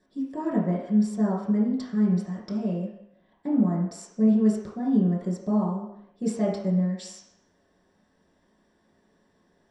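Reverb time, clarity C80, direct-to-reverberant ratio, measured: 0.75 s, 6.0 dB, −6.5 dB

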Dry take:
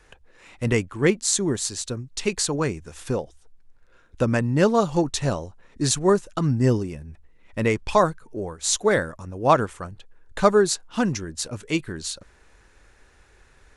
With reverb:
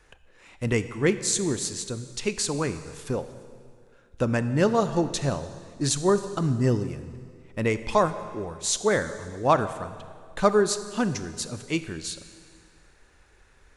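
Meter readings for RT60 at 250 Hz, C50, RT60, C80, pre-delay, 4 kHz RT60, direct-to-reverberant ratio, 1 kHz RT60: 2.1 s, 12.0 dB, 2.0 s, 13.0 dB, 26 ms, 1.9 s, 11.5 dB, 2.1 s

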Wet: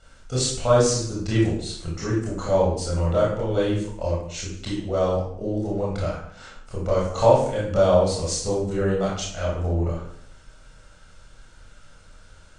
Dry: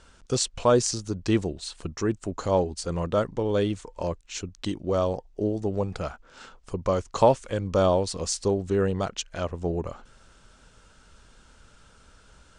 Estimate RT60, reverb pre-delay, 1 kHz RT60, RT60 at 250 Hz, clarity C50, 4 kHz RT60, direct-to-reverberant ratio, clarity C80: 0.65 s, 24 ms, 0.60 s, 0.80 s, 1.5 dB, 0.50 s, −6.0 dB, 6.5 dB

